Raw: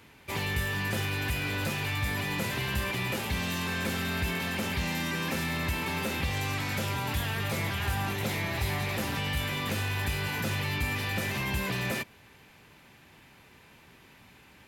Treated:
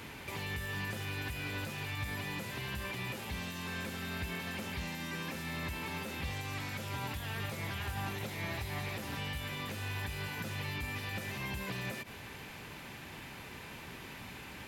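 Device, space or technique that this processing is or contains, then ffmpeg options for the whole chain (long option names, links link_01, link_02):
de-esser from a sidechain: -filter_complex "[0:a]asplit=2[link_01][link_02];[link_02]highpass=4500,apad=whole_len=647276[link_03];[link_01][link_03]sidechaincompress=threshold=-56dB:ratio=10:attack=1.1:release=51,volume=8.5dB"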